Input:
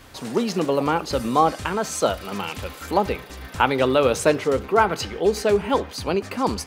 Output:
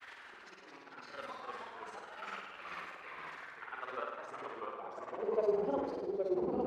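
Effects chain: reverse; compressor 10:1, threshold -27 dBFS, peak gain reduction 16 dB; reverse; band-pass sweep 1800 Hz -> 390 Hz, 3.3–6.09; grains 77 ms, grains 20/s; auto swell 0.519 s; on a send: flutter echo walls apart 8.7 m, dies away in 0.91 s; on the sum: echoes that change speed 0.158 s, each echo -2 st, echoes 2; gain +5.5 dB

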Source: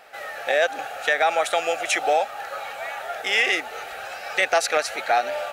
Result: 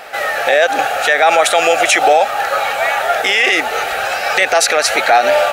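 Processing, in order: maximiser +17 dB; gain -1 dB

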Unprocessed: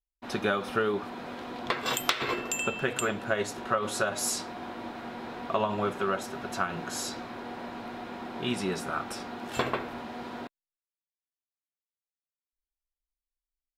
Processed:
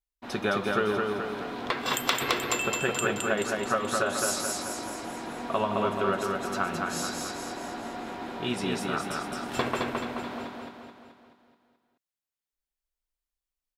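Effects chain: feedback echo 0.215 s, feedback 54%, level -3 dB

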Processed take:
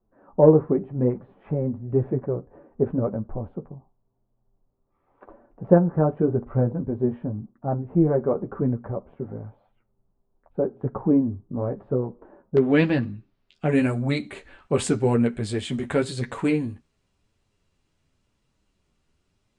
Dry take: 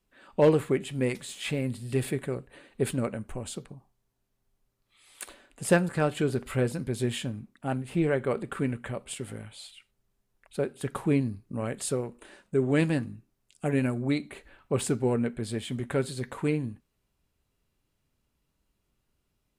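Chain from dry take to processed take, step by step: LPF 1000 Hz 24 dB/oct, from 12.57 s 4400 Hz, from 13.69 s 8500 Hz; flange 0.92 Hz, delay 8.4 ms, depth 4.7 ms, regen -22%; gain +9 dB

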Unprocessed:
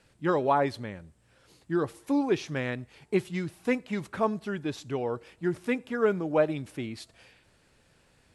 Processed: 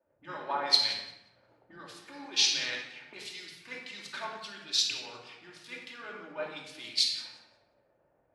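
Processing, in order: dynamic EQ 860 Hz, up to +5 dB, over -40 dBFS, Q 1.8; in parallel at +2 dB: negative-ratio compressor -35 dBFS, ratio -1; on the sum: auto-wah 530–4400 Hz, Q 2.3, up, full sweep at -26 dBFS; on a send: thinning echo 0.177 s, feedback 39%, level -14 dB; on the sum: shoebox room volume 1900 m³, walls mixed, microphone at 2.6 m; three-band expander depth 100%

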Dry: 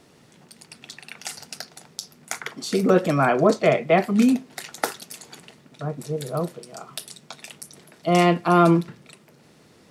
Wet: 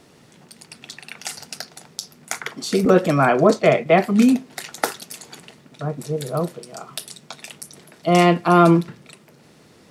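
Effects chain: 2.85–3.86 expander -23 dBFS; gain +3 dB

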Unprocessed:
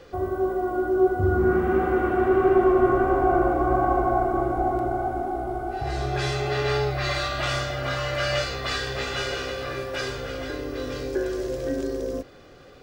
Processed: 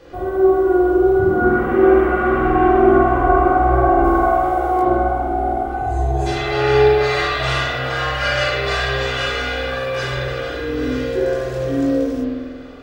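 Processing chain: 0.54–1.17 comb 2.3 ms, depth 64%; 4.04–4.83 tilt +2.5 dB/oct; 5.74–6.26 spectral gain 1100–6100 Hz -17 dB; chorus voices 6, 0.18 Hz, delay 20 ms, depth 3.5 ms; spring tank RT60 1.4 s, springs 47 ms, chirp 30 ms, DRR -6 dB; gain +4.5 dB

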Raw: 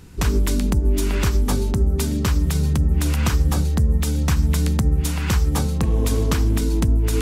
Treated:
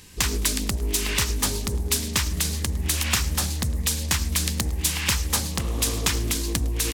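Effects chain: tilt shelf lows -8.5 dB, about 1200 Hz; de-hum 147.1 Hz, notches 6; speed mistake 24 fps film run at 25 fps; Butterworth band-stop 1400 Hz, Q 6.5; on a send: feedback echo 0.107 s, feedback 59%, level -20 dB; on the sum: Doppler distortion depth 0.4 ms

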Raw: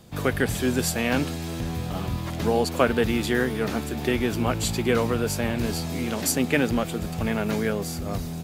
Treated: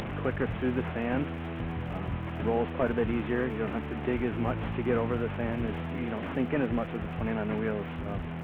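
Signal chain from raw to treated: delta modulation 16 kbps, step -28 dBFS; LPF 2200 Hz 6 dB/oct; upward compressor, threshold -27 dBFS; crackle 76/s -44 dBFS; gain -5 dB

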